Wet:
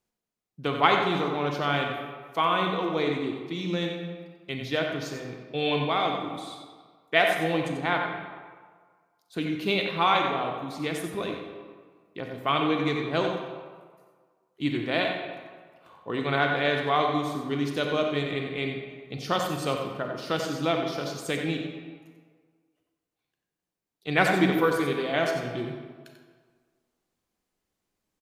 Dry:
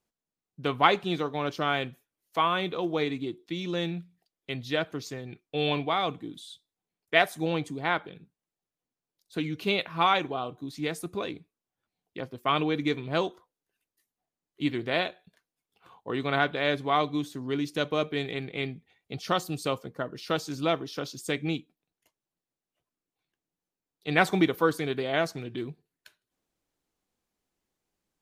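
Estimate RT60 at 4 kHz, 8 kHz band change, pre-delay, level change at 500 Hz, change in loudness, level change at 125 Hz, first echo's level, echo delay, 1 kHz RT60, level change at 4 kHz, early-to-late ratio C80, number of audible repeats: 1.0 s, +1.5 dB, 30 ms, +2.5 dB, +2.0 dB, +2.0 dB, -7.5 dB, 91 ms, 1.7 s, +1.5 dB, 3.5 dB, 1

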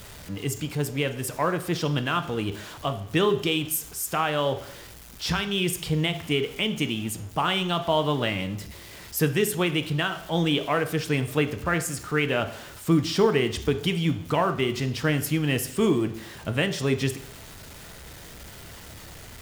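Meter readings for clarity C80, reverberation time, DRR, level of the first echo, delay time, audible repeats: 15.5 dB, 0.70 s, 8.0 dB, no echo, no echo, no echo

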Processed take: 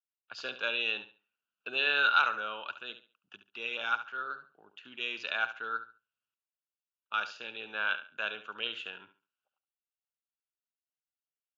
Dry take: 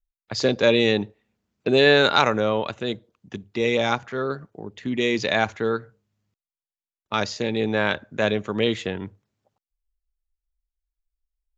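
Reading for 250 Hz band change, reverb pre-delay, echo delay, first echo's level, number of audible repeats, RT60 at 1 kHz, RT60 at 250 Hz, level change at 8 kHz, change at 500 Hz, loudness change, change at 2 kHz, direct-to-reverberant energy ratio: -28.5 dB, no reverb, 70 ms, -12.0 dB, 2, no reverb, no reverb, no reading, -23.0 dB, -10.0 dB, -5.0 dB, no reverb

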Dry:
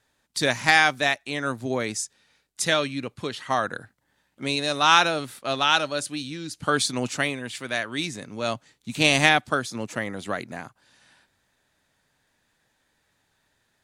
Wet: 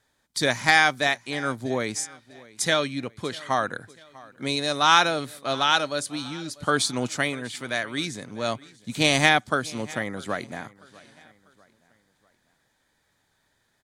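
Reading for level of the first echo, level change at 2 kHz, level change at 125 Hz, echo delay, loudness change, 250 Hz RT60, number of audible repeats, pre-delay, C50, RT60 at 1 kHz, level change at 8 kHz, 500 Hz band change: -22.0 dB, -0.5 dB, 0.0 dB, 645 ms, -0.5 dB, no reverb, 2, no reverb, no reverb, no reverb, 0.0 dB, 0.0 dB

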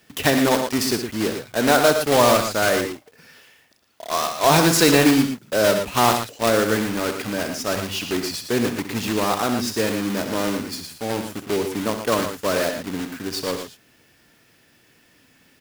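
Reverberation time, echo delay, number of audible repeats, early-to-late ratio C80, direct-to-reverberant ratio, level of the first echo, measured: no reverb, 65 ms, 2, no reverb, no reverb, -10.5 dB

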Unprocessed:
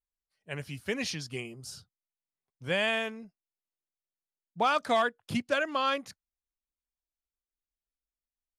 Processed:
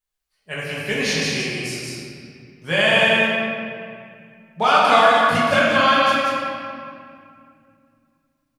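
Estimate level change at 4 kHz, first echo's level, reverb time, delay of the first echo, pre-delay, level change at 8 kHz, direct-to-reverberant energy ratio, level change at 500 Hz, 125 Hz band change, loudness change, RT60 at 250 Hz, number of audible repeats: +14.5 dB, -3.5 dB, 2.3 s, 183 ms, 5 ms, +12.5 dB, -9.0 dB, +13.0 dB, +12.0 dB, +13.0 dB, 3.2 s, 1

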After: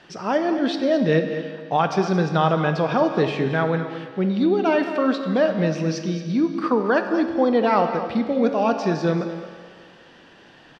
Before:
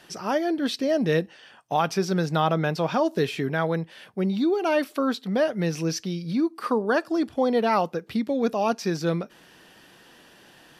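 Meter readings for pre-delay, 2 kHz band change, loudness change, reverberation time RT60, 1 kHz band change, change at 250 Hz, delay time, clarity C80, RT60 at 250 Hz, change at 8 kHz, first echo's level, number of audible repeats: 15 ms, +3.5 dB, +3.5 dB, 1.9 s, +4.0 dB, +4.0 dB, 222 ms, 7.5 dB, 1.9 s, -4.5 dB, -12.0 dB, 1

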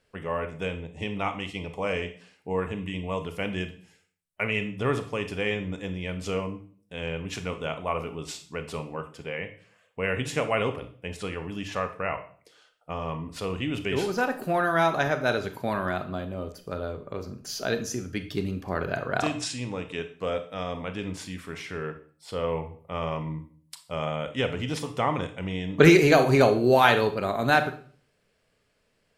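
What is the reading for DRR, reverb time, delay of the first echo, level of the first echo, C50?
8.0 dB, 0.45 s, no echo, no echo, 12.0 dB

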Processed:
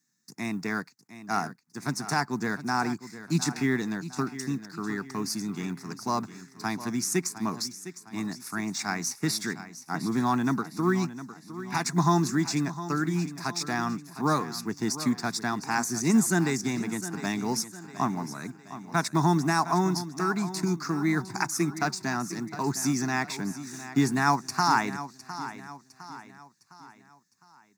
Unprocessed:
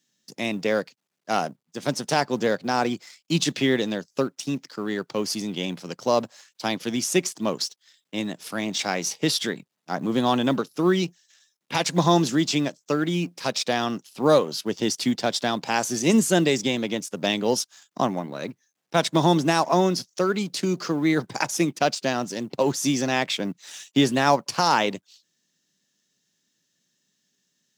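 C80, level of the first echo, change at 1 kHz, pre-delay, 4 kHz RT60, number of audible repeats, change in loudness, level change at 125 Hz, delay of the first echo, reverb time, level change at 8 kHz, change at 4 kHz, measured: no reverb, -13.5 dB, -3.0 dB, no reverb, no reverb, 4, -4.5 dB, -1.0 dB, 708 ms, no reverb, -2.5 dB, -8.5 dB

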